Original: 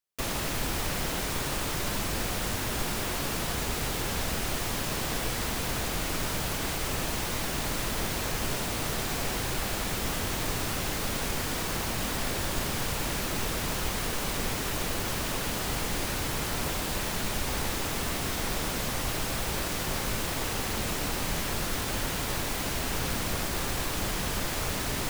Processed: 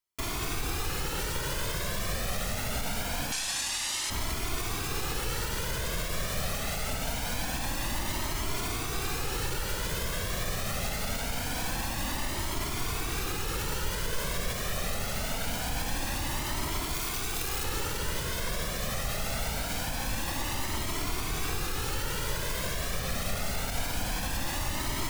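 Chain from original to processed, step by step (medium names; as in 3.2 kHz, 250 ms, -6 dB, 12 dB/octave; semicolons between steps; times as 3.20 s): 3.32–4.10 s: frequency weighting ITU-R 468; peak limiter -23 dBFS, peak gain reduction 8.5 dB; 16.94–17.64 s: integer overflow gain 26.5 dB; on a send at -14.5 dB: reverberation RT60 5.0 s, pre-delay 130 ms; on the sum: Shepard-style flanger rising 0.24 Hz; trim +4.5 dB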